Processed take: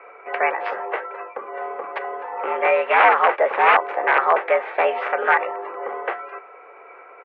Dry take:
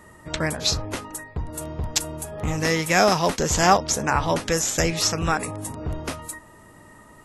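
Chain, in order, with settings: comb 2.7 ms, depth 32%; integer overflow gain 11.5 dB; formant shift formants +3 st; mistuned SSB +88 Hz 370–2200 Hz; trim +7.5 dB

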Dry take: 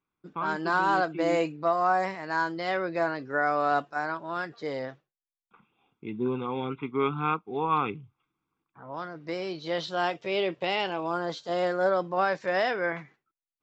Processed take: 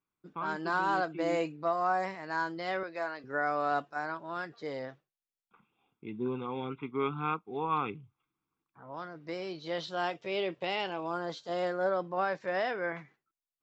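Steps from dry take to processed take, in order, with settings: 2.83–3.24 s: high-pass 710 Hz 6 dB/octave; 11.70–12.95 s: treble shelf 4.6 kHz -7 dB; trim -5 dB

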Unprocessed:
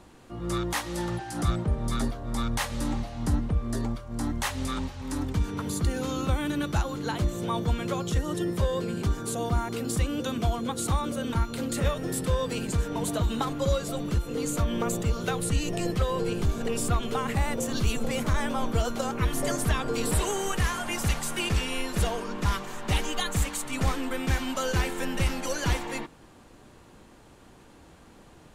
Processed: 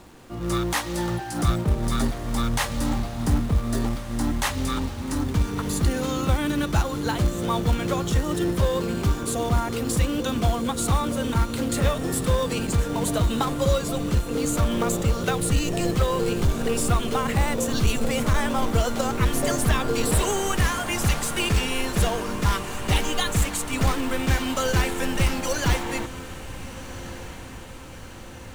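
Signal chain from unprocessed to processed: in parallel at -4 dB: companded quantiser 4-bit; on the sum: echo that smears into a reverb 1431 ms, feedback 56%, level -14 dB

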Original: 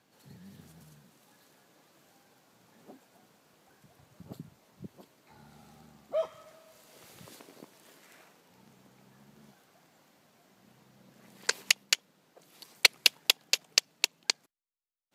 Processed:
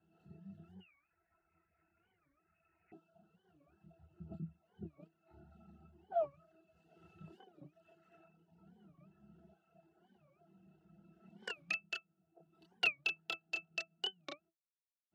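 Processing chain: chorus voices 6, 0.41 Hz, delay 28 ms, depth 2.8 ms; 0.82–2.92 s: frequency inversion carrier 2.7 kHz; reverb removal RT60 1.2 s; pitch-class resonator E, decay 0.11 s; warped record 45 rpm, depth 250 cents; trim +9.5 dB

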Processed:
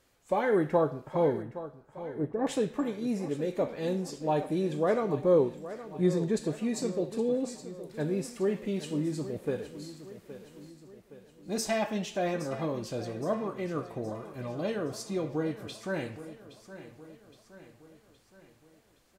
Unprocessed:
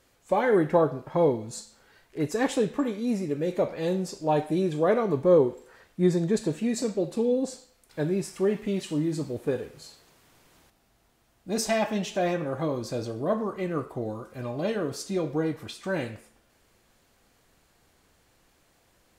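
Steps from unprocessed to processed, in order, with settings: 1.42–2.47 s: low-pass 1.2 kHz 24 dB/octave; feedback delay 818 ms, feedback 52%, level -14 dB; trim -4 dB

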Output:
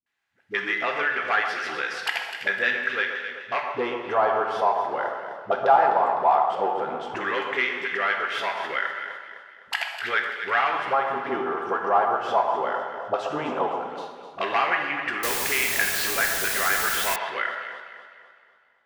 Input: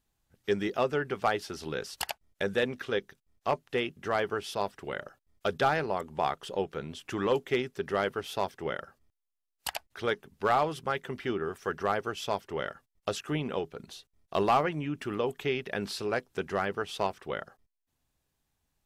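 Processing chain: waveshaping leveller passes 1; LFO band-pass square 0.14 Hz 890–1900 Hz; phase dispersion highs, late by 64 ms, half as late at 320 Hz; on a send: echo whose repeats swap between lows and highs 127 ms, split 1.5 kHz, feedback 65%, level -7.5 dB; on the sum: two-slope reverb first 0.94 s, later 2.8 s, from -18 dB, DRR 3.5 dB; in parallel at +0.5 dB: compression, threshold -40 dBFS, peak gain reduction 17 dB; 15.23–17.16 s: on the sum: word length cut 6-bit, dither triangular; trim +8 dB

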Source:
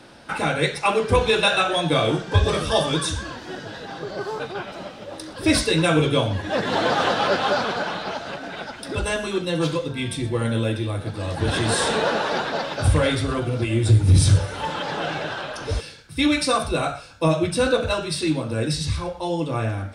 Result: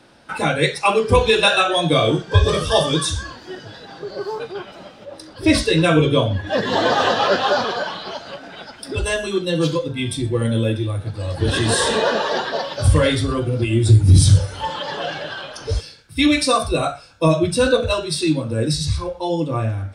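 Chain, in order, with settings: spectral noise reduction 8 dB; 5.05–6.47 s: treble shelf 5.9 kHz -8.5 dB; trim +4 dB

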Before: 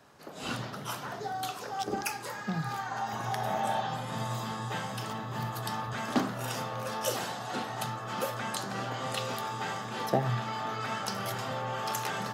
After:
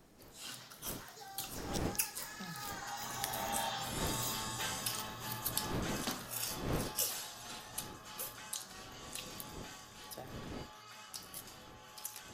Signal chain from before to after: wind noise 340 Hz -30 dBFS; Doppler pass-by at 4.31 s, 12 m/s, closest 15 m; pre-emphasis filter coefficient 0.9; trim +9 dB

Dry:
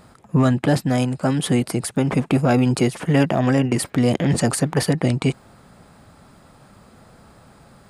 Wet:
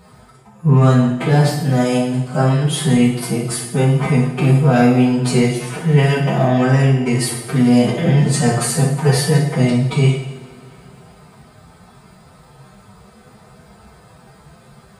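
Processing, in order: comb of notches 280 Hz; time stretch by phase-locked vocoder 1.9×; in parallel at -12 dB: hard clipper -15.5 dBFS, distortion -14 dB; on the sum: two-slope reverb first 0.72 s, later 2.9 s, from -18 dB, DRR -2 dB

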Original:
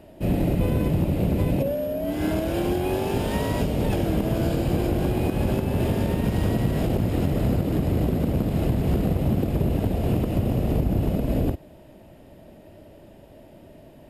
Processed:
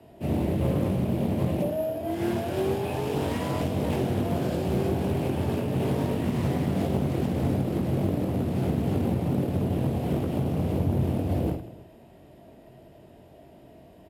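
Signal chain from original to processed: reverse bouncing-ball echo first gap 20 ms, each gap 1.6×, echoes 5; frequency shift +36 Hz; loudspeaker Doppler distortion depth 0.43 ms; trim -5.5 dB

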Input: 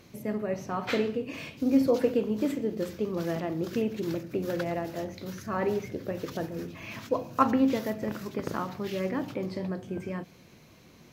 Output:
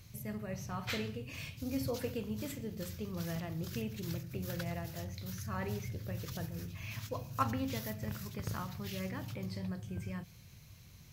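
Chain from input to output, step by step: FFT filter 110 Hz 0 dB, 290 Hz -23 dB, 14 kHz -2 dB; trim +6.5 dB

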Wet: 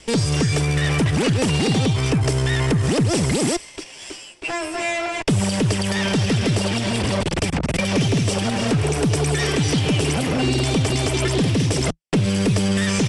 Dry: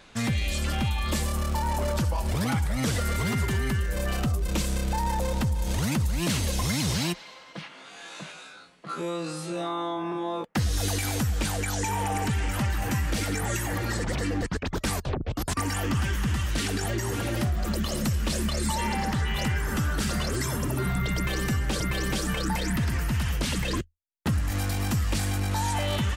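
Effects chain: comb filter that takes the minimum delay 0.74 ms; speed mistake 7.5 ips tape played at 15 ips; resampled via 22.05 kHz; trim +8 dB

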